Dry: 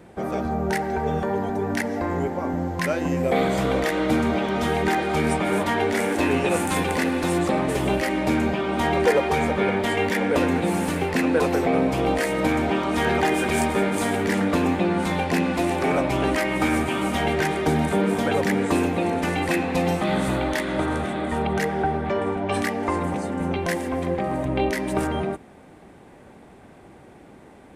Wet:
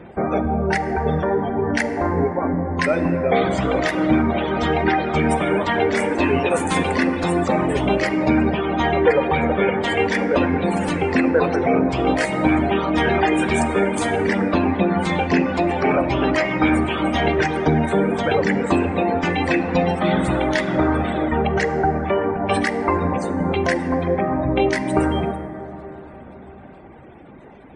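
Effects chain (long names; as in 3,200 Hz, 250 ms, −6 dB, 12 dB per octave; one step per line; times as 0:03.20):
reverb reduction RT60 1.2 s
in parallel at −2 dB: speech leveller
on the sum: low-pass filter 9,100 Hz 12 dB per octave
gate on every frequency bin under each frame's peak −30 dB strong
dense smooth reverb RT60 4.6 s, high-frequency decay 0.25×, pre-delay 0 ms, DRR 8 dB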